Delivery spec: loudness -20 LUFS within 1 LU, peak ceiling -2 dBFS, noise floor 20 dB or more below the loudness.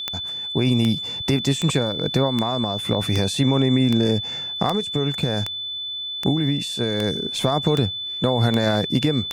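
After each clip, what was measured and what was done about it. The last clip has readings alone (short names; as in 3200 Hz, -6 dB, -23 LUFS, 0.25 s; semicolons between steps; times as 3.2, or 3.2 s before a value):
clicks 13; steady tone 3500 Hz; tone level -27 dBFS; loudness -21.5 LUFS; peak -7.5 dBFS; loudness target -20.0 LUFS
-> de-click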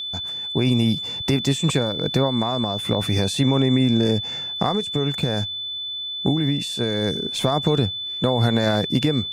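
clicks 0; steady tone 3500 Hz; tone level -27 dBFS
-> notch 3500 Hz, Q 30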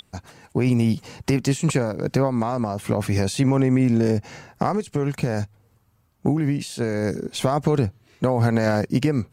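steady tone none; loudness -22.5 LUFS; peak -8.5 dBFS; loudness target -20.0 LUFS
-> gain +2.5 dB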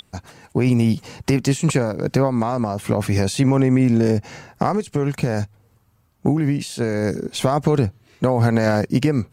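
loudness -20.0 LUFS; peak -6.0 dBFS; noise floor -60 dBFS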